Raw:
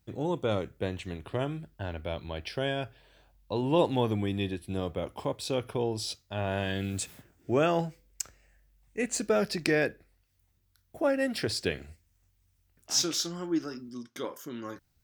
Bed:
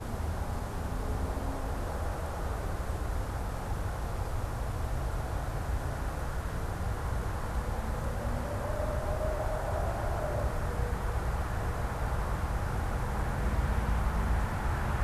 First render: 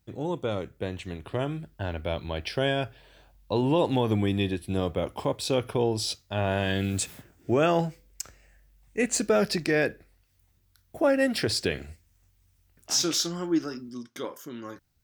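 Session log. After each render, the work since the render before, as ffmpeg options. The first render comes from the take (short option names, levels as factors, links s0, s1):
-af "alimiter=limit=0.126:level=0:latency=1:release=82,dynaudnorm=f=230:g=13:m=1.78"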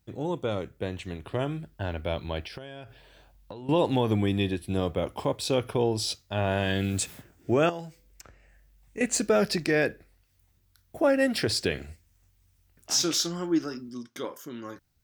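-filter_complex "[0:a]asettb=1/sr,asplit=3[s0][s1][s2];[s0]atrim=end=2.434[s3];[s1]atrim=start=2.43:end=3.69,asetpts=PTS-STARTPTS,afade=t=in:d=0.004:c=qsin,afade=t=out:st=1.256:d=0.004:c=qsin,acompressor=threshold=0.0158:ratio=20:attack=3.2:release=140:knee=1:detection=peak[s4];[s2]atrim=start=3.686[s5];[s3][s4]acrossfade=d=0.004:c1=hsin:c2=qsin[s6];[s6][s5]acrossfade=d=0.004:c1=qsin:c2=hsin,asettb=1/sr,asplit=3[s7][s8][s9];[s7]atrim=end=7.694[s10];[s8]atrim=start=7.69:end=9.01,asetpts=PTS-STARTPTS,afade=t=in:d=0.004:c=qsin,afade=t=out:st=1.316:d=0.004:c=qsin,acrossover=split=1100|3200[s11][s12][s13];[s11]acompressor=threshold=0.0158:ratio=4[s14];[s12]acompressor=threshold=0.00224:ratio=4[s15];[s13]acompressor=threshold=0.002:ratio=4[s16];[s14][s15][s16]amix=inputs=3:normalize=0[s17];[s9]atrim=start=9.006[s18];[s10][s17]acrossfade=d=0.004:c1=hsin:c2=qsin[s19];[s19][s18]acrossfade=d=0.004:c1=qsin:c2=hsin"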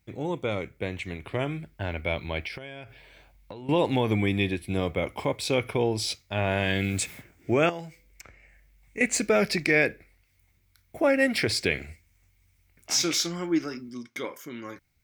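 -af "equalizer=f=2200:w=5.2:g=15"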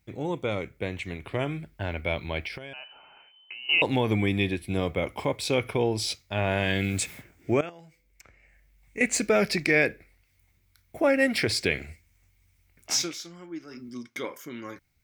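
-filter_complex "[0:a]asettb=1/sr,asplit=3[s0][s1][s2];[s0]atrim=end=2.734[s3];[s1]atrim=start=2.73:end=3.82,asetpts=PTS-STARTPTS,afade=t=in:d=0.004:c=qsin,afade=t=out:st=1.086:d=0.004:c=qsin,lowpass=f=2600:t=q:w=0.5098,lowpass=f=2600:t=q:w=0.6013,lowpass=f=2600:t=q:w=0.9,lowpass=f=2600:t=q:w=2.563,afreqshift=-3100[s4];[s2]atrim=start=3.816[s5];[s3][s4]acrossfade=d=0.004:c1=hsin:c2=qsin[s6];[s6][s5]acrossfade=d=0.004:c1=qsin:c2=hsin,asplit=4[s7][s8][s9][s10];[s7]atrim=end=7.61,asetpts=PTS-STARTPTS,afade=t=out:st=7.606:d=0.004:c=hsin:silence=0.141254[s11];[s8]atrim=start=7.61:end=13.14,asetpts=PTS-STARTPTS,afade=t=in:d=1.39:silence=0.141254,afade=t=out:st=5.33:d=0.2:silence=0.223872[s12];[s9]atrim=start=13.14:end=13.67,asetpts=PTS-STARTPTS,volume=0.224[s13];[s10]atrim=start=13.67,asetpts=PTS-STARTPTS,afade=t=in:d=0.2:silence=0.223872[s14];[s11][s12][s13][s14]concat=n=4:v=0:a=1"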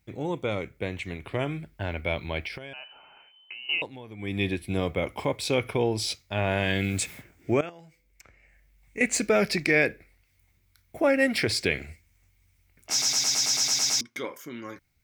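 -filter_complex "[0:a]asplit=13[s0][s1][s2][s3][s4][s5][s6][s7][s8][s9][s10][s11][s12];[s0]atrim=end=3.9,asetpts=PTS-STARTPTS,afade=t=out:st=3.6:d=0.3:silence=0.11885[s13];[s1]atrim=start=3.9:end=4.17,asetpts=PTS-STARTPTS,volume=0.119[s14];[s2]atrim=start=4.17:end=13.022,asetpts=PTS-STARTPTS,afade=t=in:d=0.3:silence=0.11885[s15];[s3]atrim=start=12.908:end=13.022[s16];[s4]atrim=start=12.908:end=13.022[s17];[s5]atrim=start=12.908:end=13.022[s18];[s6]atrim=start=12.908:end=13.022[s19];[s7]atrim=start=12.908:end=13.022[s20];[s8]atrim=start=12.908:end=13.022[s21];[s9]atrim=start=12.908:end=13.022[s22];[s10]atrim=start=12.908:end=13.022[s23];[s11]atrim=start=12.908:end=13.022[s24];[s12]atrim=start=14.008[s25];[s13][s14][s15]concat=n=3:v=0:a=1[s26];[s26][s16]acrossfade=d=0.004:c1=hsin:c2=hsin[s27];[s27][s17]acrossfade=d=0.004:c1=hsin:c2=hsin[s28];[s28][s18]acrossfade=d=0.004:c1=hsin:c2=hsin[s29];[s29][s19]acrossfade=d=0.004:c1=hsin:c2=hsin[s30];[s30][s20]acrossfade=d=0.004:c1=hsin:c2=hsin[s31];[s31][s21]acrossfade=d=0.004:c1=hsin:c2=hsin[s32];[s32][s22]acrossfade=d=0.004:c1=hsin:c2=hsin[s33];[s33][s23]acrossfade=d=0.004:c1=hsin:c2=hsin[s34];[s34][s24]acrossfade=d=0.004:c1=hsin:c2=hsin[s35];[s35][s25]acrossfade=d=0.004:c1=hsin:c2=hsin"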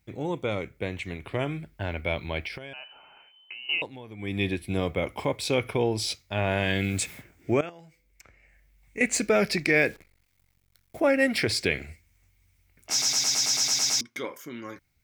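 -filter_complex "[0:a]asettb=1/sr,asplit=3[s0][s1][s2];[s0]atrim=end=9.754[s3];[s1]atrim=start=9.75:end=11,asetpts=PTS-STARTPTS,afade=t=in:d=0.004:c=qsin,afade=t=out:st=1.246:d=0.004:c=qsin,acrusher=bits=9:dc=4:mix=0:aa=0.000001[s4];[s2]atrim=start=10.996[s5];[s3][s4]acrossfade=d=0.004:c1=hsin:c2=qsin[s6];[s6][s5]acrossfade=d=0.004:c1=qsin:c2=hsin"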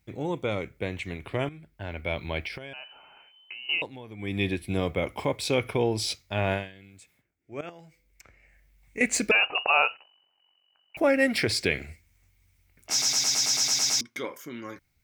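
-filter_complex "[0:a]asettb=1/sr,asplit=3[s0][s1][s2];[s0]atrim=end=9.314[s3];[s1]atrim=start=9.31:end=10.97,asetpts=PTS-STARTPTS,afade=t=in:d=0.004:c=qsin,afade=t=out:st=1.656:d=0.004:c=qsin,lowpass=f=2600:t=q:w=0.5098,lowpass=f=2600:t=q:w=0.6013,lowpass=f=2600:t=q:w=0.9,lowpass=f=2600:t=q:w=2.563,afreqshift=-3000[s4];[s2]atrim=start=10.966[s5];[s3][s4]acrossfade=d=0.004:c1=hsin:c2=qsin[s6];[s6][s5]acrossfade=d=0.004:c1=qsin:c2=hsin,asplit=4[s7][s8][s9][s10];[s7]atrim=end=1.49,asetpts=PTS-STARTPTS,afade=t=out:st=1.486:d=0.004:c=hsin:silence=0.199526[s11];[s8]atrim=start=1.49:end=6.73,asetpts=PTS-STARTPTS,afade=t=in:d=0.8:silence=0.199526,afade=t=out:st=5.04:d=0.2:c=qua:silence=0.0630957[s12];[s9]atrim=start=6.73:end=7.49,asetpts=PTS-STARTPTS,volume=0.0631[s13];[s10]atrim=start=7.49,asetpts=PTS-STARTPTS,afade=t=in:d=0.2:c=qua:silence=0.0630957[s14];[s11][s12][s13][s14]concat=n=4:v=0:a=1"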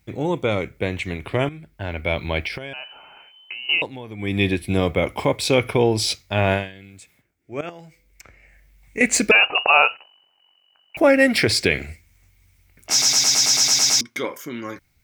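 -af "volume=2.37,alimiter=limit=0.708:level=0:latency=1"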